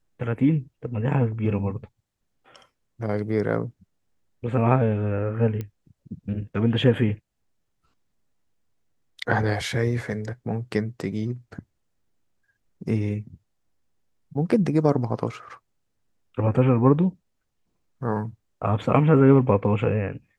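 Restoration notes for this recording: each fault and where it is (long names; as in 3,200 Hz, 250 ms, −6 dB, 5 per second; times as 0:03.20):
0:05.61: click −19 dBFS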